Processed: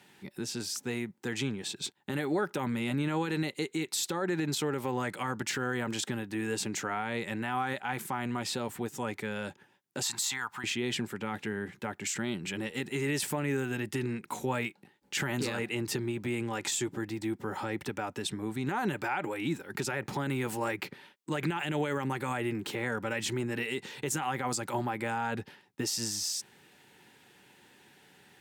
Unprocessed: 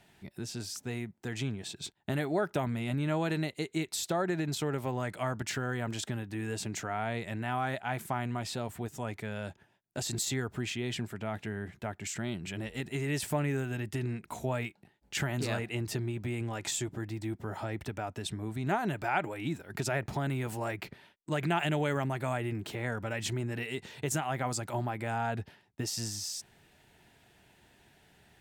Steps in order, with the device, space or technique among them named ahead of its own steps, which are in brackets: PA system with an anti-feedback notch (HPF 180 Hz 12 dB/oct; Butterworth band-stop 660 Hz, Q 4.7; limiter -26 dBFS, peak gain reduction 10 dB); 10.03–10.64 resonant low shelf 640 Hz -13 dB, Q 3; gain +4.5 dB

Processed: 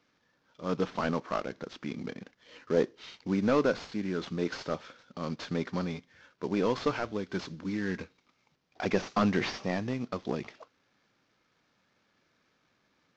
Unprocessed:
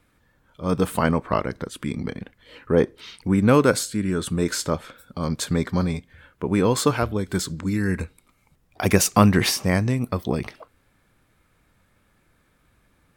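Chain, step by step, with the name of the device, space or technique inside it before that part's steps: early wireless headset (HPF 190 Hz 12 dB/oct; CVSD 32 kbps); gain -6.5 dB

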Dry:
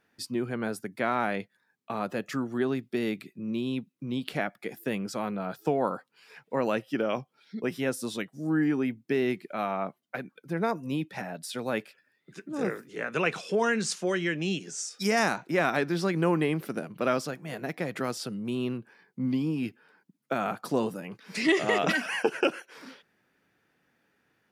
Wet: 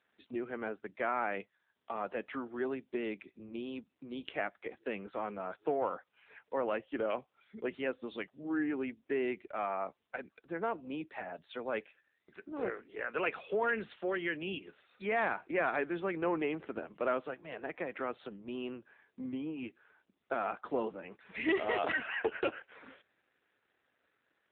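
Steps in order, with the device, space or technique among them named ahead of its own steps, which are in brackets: telephone (BPF 340–3300 Hz; soft clip -17 dBFS, distortion -21 dB; gain -3 dB; AMR-NB 7.95 kbps 8000 Hz)

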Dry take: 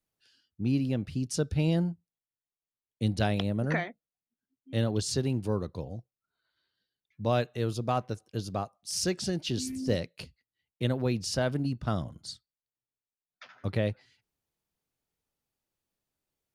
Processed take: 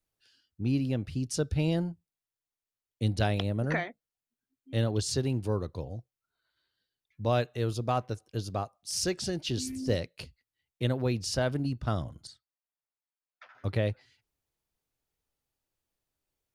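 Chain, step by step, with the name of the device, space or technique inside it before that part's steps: 12.27–13.55 three-band isolator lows -14 dB, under 450 Hz, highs -12 dB, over 2200 Hz; low shelf boost with a cut just above (low shelf 63 Hz +7 dB; bell 190 Hz -5 dB 0.62 oct)

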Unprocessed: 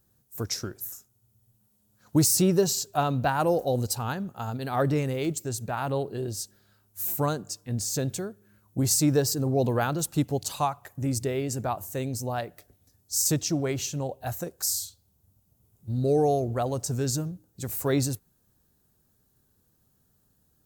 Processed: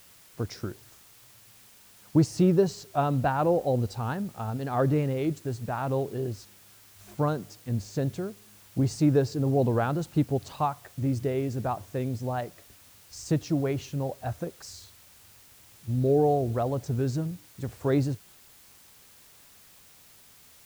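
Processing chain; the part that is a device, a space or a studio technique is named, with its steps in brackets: cassette deck with a dirty head (tape spacing loss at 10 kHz 27 dB; wow and flutter; white noise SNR 26 dB); gain +1.5 dB

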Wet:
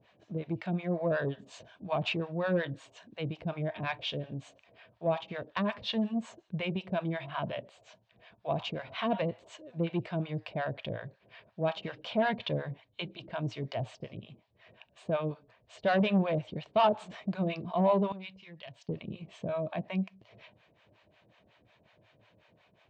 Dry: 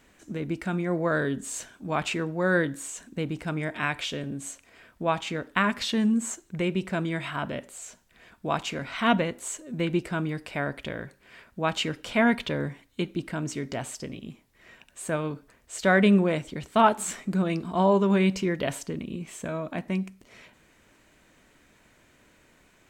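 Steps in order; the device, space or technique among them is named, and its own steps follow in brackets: guitar amplifier with harmonic tremolo (harmonic tremolo 5.5 Hz, depth 100%, crossover 610 Hz; soft clip -20.5 dBFS, distortion -15 dB; speaker cabinet 98–4000 Hz, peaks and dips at 110 Hz +9 dB, 260 Hz -10 dB, 370 Hz -4 dB, 640 Hz +6 dB, 1400 Hz -8 dB, 2000 Hz -6 dB); 18.12–18.89 passive tone stack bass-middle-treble 5-5-5; gain +2 dB

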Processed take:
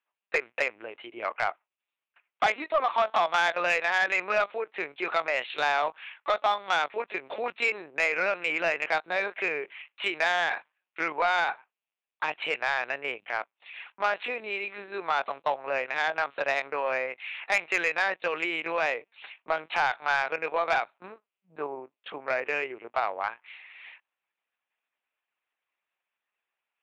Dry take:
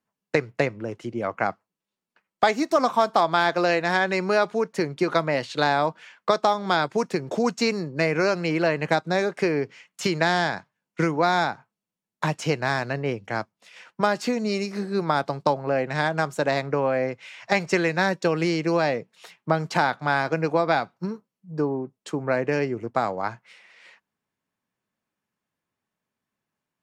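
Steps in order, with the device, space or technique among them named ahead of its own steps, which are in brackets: talking toy (LPC vocoder at 8 kHz pitch kept; HPF 690 Hz 12 dB/oct; bell 2500 Hz +8 dB 0.52 oct; soft clip -15 dBFS, distortion -16 dB)

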